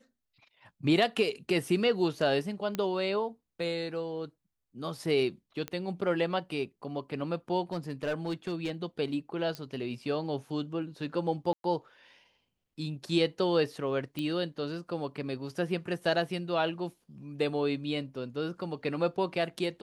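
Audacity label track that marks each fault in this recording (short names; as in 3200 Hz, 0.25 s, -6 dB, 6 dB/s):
2.750000	2.750000	pop -18 dBFS
5.680000	5.680000	pop -20 dBFS
7.720000	8.710000	clipped -27 dBFS
9.550000	9.550000	pop -23 dBFS
11.530000	11.640000	gap 0.112 s
14.190000	14.190000	pop -21 dBFS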